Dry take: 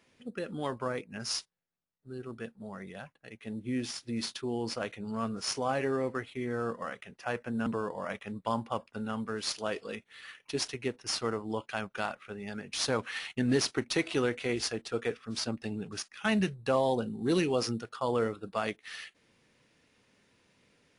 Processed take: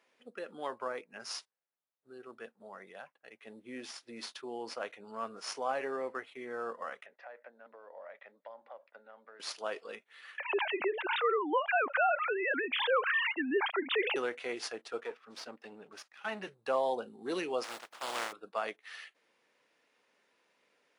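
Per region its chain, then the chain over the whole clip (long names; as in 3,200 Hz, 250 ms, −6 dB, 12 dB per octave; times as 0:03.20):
0:07.06–0:09.40: downward compressor 4 to 1, threshold −46 dBFS + loudspeaker in its box 330–3,900 Hz, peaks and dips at 390 Hz −4 dB, 580 Hz +9 dB, 1,100 Hz −5 dB, 1,900 Hz +5 dB, 2,900 Hz −8 dB
0:10.38–0:14.16: three sine waves on the formant tracks + envelope flattener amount 70%
0:15.00–0:16.47: gain on one half-wave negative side −7 dB + high-shelf EQ 7,700 Hz −8 dB
0:17.63–0:18.31: compressing power law on the bin magnitudes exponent 0.18 + low-pass filter 3,200 Hz 6 dB per octave + notch filter 430 Hz, Q 9.2
whole clip: high-pass filter 540 Hz 12 dB per octave; high-shelf EQ 2,500 Hz −9 dB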